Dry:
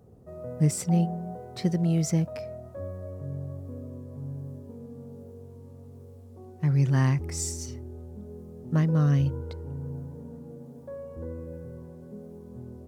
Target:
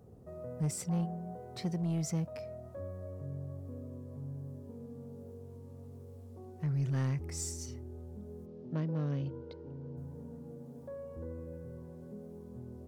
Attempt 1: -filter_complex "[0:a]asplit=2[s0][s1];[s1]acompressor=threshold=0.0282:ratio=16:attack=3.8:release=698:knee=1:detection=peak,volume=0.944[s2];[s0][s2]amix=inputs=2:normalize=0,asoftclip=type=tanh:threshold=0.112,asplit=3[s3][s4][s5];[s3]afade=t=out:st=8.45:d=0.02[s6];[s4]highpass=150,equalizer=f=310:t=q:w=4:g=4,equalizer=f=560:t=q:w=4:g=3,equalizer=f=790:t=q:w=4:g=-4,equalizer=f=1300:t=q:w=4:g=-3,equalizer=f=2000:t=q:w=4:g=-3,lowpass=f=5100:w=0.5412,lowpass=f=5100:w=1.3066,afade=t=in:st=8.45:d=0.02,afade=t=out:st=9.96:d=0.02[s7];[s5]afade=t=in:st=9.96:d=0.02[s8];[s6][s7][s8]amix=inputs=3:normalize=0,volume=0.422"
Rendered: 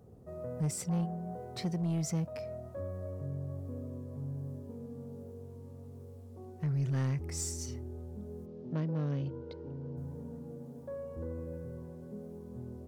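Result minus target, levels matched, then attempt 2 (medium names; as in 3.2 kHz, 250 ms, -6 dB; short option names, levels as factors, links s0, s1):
compression: peak gain reduction -10.5 dB
-filter_complex "[0:a]asplit=2[s0][s1];[s1]acompressor=threshold=0.00794:ratio=16:attack=3.8:release=698:knee=1:detection=peak,volume=0.944[s2];[s0][s2]amix=inputs=2:normalize=0,asoftclip=type=tanh:threshold=0.112,asplit=3[s3][s4][s5];[s3]afade=t=out:st=8.45:d=0.02[s6];[s4]highpass=150,equalizer=f=310:t=q:w=4:g=4,equalizer=f=560:t=q:w=4:g=3,equalizer=f=790:t=q:w=4:g=-4,equalizer=f=1300:t=q:w=4:g=-3,equalizer=f=2000:t=q:w=4:g=-3,lowpass=f=5100:w=0.5412,lowpass=f=5100:w=1.3066,afade=t=in:st=8.45:d=0.02,afade=t=out:st=9.96:d=0.02[s7];[s5]afade=t=in:st=9.96:d=0.02[s8];[s6][s7][s8]amix=inputs=3:normalize=0,volume=0.422"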